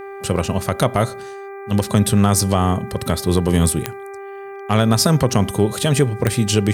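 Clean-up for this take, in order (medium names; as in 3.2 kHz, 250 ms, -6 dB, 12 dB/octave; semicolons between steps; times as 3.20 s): de-click; de-hum 395 Hz, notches 6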